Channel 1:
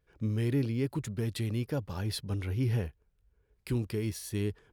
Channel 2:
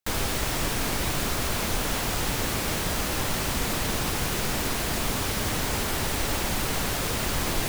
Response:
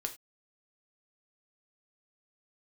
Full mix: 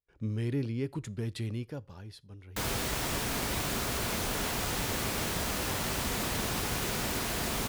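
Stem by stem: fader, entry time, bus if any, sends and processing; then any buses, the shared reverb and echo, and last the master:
0:01.49 −4 dB → 0:02.22 −17 dB, 0.00 s, send −14 dB, noise gate with hold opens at −60 dBFS; low-pass filter 9,800 Hz 12 dB per octave
−8.0 dB, 2.50 s, send −5.5 dB, high-pass filter 42 Hz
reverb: on, pre-delay 3 ms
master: no processing

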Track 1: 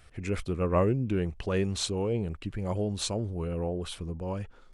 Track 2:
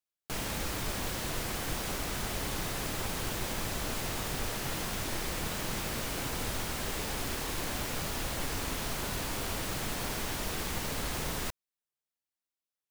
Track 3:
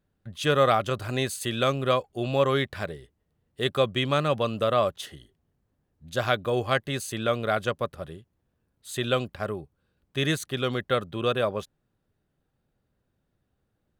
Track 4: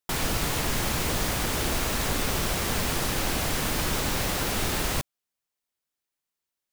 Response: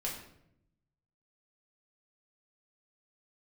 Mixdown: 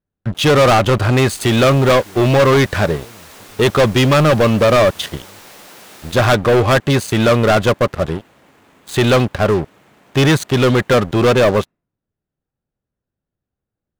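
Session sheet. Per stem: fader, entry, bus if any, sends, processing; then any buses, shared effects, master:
−13.5 dB, 0.95 s, no send, no processing
−13.5 dB, 0.05 s, send −12 dB, running median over 9 samples; high-pass filter 150 Hz; speech leveller
+2.0 dB, 0.00 s, no send, low-pass filter 2,400 Hz 6 dB per octave; leveller curve on the samples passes 5
−11.0 dB, 1.30 s, no send, high-pass filter 340 Hz 12 dB per octave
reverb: on, RT60 0.75 s, pre-delay 5 ms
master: no processing

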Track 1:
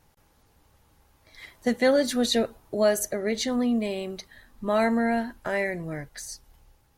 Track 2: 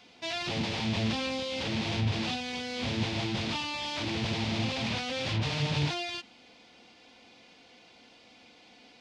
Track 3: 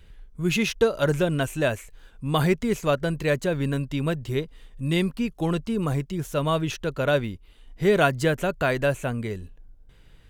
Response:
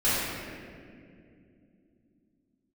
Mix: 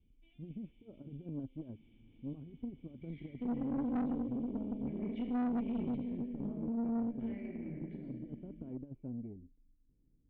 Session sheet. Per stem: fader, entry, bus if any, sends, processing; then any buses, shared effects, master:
+3.0 dB, 1.75 s, send −10.5 dB, treble cut that deepens with the level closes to 500 Hz, closed at −18 dBFS; downward compressor 1.5 to 1, threshold −56 dBFS, peak gain reduction 13 dB
−15.0 dB, 0.00 s, no send, automatic ducking −10 dB, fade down 0.60 s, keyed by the third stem
−7.0 dB, 0.00 s, no send, low-pass filter 1,100 Hz 24 dB per octave; compressor whose output falls as the input rises −25 dBFS, ratio −0.5; pitch vibrato 12 Hz 35 cents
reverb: on, RT60 2.5 s, pre-delay 3 ms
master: formant resonators in series i; tube saturation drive 31 dB, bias 0.5

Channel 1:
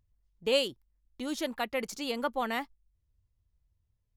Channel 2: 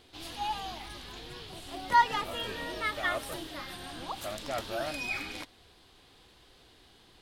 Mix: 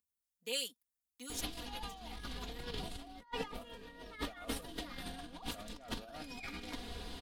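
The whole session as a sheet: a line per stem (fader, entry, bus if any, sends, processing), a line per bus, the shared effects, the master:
−8.5 dB, 0.00 s, no send, high-pass filter 81 Hz 24 dB per octave; first-order pre-emphasis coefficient 0.97; comb filter 4.1 ms, depth 54%
+1.0 dB, 1.30 s, no send, downward compressor 8 to 1, threshold −35 dBFS, peak gain reduction 18 dB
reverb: not used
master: low-shelf EQ 370 Hz +8.5 dB; comb filter 4.2 ms, depth 68%; compressor whose output falls as the input rises −42 dBFS, ratio −0.5

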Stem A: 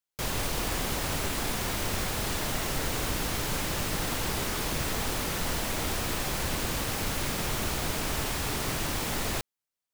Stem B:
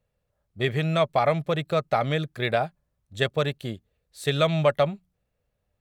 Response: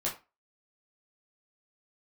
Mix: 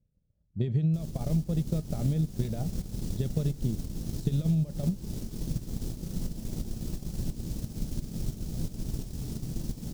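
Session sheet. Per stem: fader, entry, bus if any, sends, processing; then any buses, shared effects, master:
−2.0 dB, 0.75 s, send −9.5 dB, shaped tremolo saw up 2.9 Hz, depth 45%
+2.5 dB, 0.00 s, send −19.5 dB, low-pass filter 6,200 Hz; brickwall limiter −19 dBFS, peak gain reduction 10 dB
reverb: on, RT60 0.30 s, pre-delay 10 ms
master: drawn EQ curve 120 Hz 0 dB, 180 Hz +4 dB, 1,100 Hz −26 dB, 2,100 Hz −26 dB, 5,500 Hz −11 dB, 9,300 Hz −13 dB; transient designer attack +5 dB, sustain −6 dB; downward compressor 6 to 1, threshold −23 dBFS, peak gain reduction 8 dB

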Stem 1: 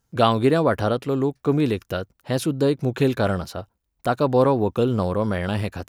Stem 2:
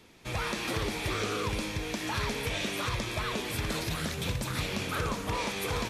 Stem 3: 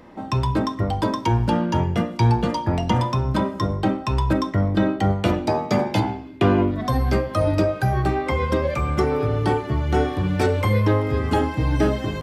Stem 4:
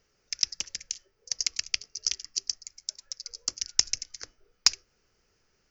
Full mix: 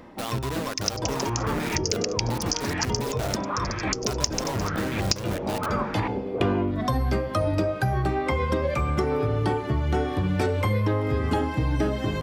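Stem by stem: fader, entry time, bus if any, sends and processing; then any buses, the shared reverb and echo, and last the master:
−9.0 dB, 0.00 s, no send, high-shelf EQ 2,800 Hz +7.5 dB; output level in coarse steps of 12 dB; bit reduction 4 bits
+2.0 dB, 0.70 s, no send, auto-filter low-pass saw up 0.93 Hz 360–2,100 Hz
+1.0 dB, 0.00 s, no send, automatic ducking −11 dB, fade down 0.45 s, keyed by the first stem
+2.5 dB, 0.45 s, no send, no processing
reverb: not used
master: downward compressor 4 to 1, threshold −21 dBFS, peak gain reduction 9.5 dB

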